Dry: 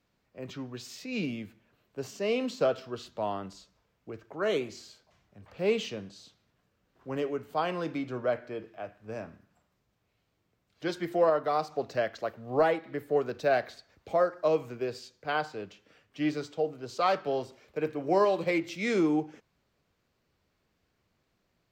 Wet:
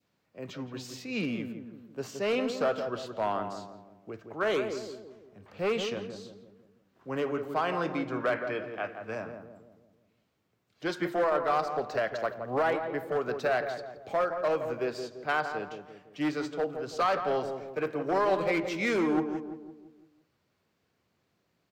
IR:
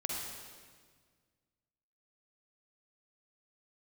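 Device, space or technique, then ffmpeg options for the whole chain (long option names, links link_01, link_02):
limiter into clipper: -filter_complex "[0:a]highpass=98,asettb=1/sr,asplit=3[link_01][link_02][link_03];[link_01]atrim=end=8.204[link_04];[link_02]atrim=start=8.2:end=9.15,asetpts=PTS-STARTPTS,afade=type=in:duration=0.004:curve=qsin,afade=type=out:start_time=0.946:duration=0.004:curve=qsin,equalizer=frequency=2300:width_type=o:width=2:gain=8.5[link_05];[link_03]atrim=start=9.146[link_06];[link_04][link_05]acrossfade=duration=0.004:curve1=hsin:curve2=qsin[link_07];[link_07][link_06]acrossfade=duration=0.004:curve1=qsin:curve2=hsin,alimiter=limit=-20dB:level=0:latency=1:release=124,asoftclip=type=hard:threshold=-24.5dB,asplit=2[link_08][link_09];[link_09]adelay=169,lowpass=frequency=990:poles=1,volume=-6dB,asplit=2[link_10][link_11];[link_11]adelay=169,lowpass=frequency=990:poles=1,volume=0.52,asplit=2[link_12][link_13];[link_13]adelay=169,lowpass=frequency=990:poles=1,volume=0.52,asplit=2[link_14][link_15];[link_15]adelay=169,lowpass=frequency=990:poles=1,volume=0.52,asplit=2[link_16][link_17];[link_17]adelay=169,lowpass=frequency=990:poles=1,volume=0.52,asplit=2[link_18][link_19];[link_19]adelay=169,lowpass=frequency=990:poles=1,volume=0.52[link_20];[link_08][link_10][link_12][link_14][link_16][link_18][link_20]amix=inputs=7:normalize=0,adynamicequalizer=threshold=0.00447:dfrequency=1300:dqfactor=1:tfrequency=1300:tqfactor=1:attack=5:release=100:ratio=0.375:range=3.5:mode=boostabove:tftype=bell"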